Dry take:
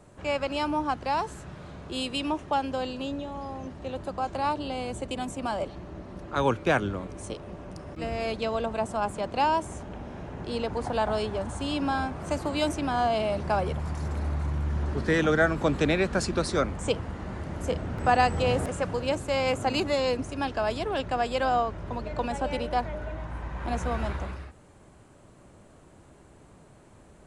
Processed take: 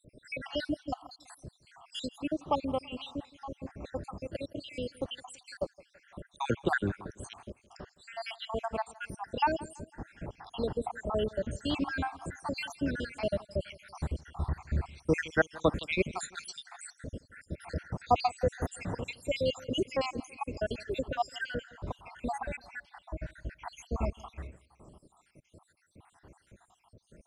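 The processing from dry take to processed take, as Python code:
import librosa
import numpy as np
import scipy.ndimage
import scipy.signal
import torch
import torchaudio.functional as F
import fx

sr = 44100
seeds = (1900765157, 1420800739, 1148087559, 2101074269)

p1 = fx.spec_dropout(x, sr, seeds[0], share_pct=75)
y = p1 + fx.echo_feedback(p1, sr, ms=166, feedback_pct=42, wet_db=-21.5, dry=0)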